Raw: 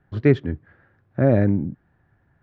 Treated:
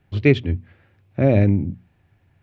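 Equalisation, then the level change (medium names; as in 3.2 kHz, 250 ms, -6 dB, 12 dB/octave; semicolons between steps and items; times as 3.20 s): peaking EQ 91 Hz +9.5 dB 0.26 oct; resonant high shelf 2 kHz +6.5 dB, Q 3; hum notches 60/120/180/240 Hz; +1.0 dB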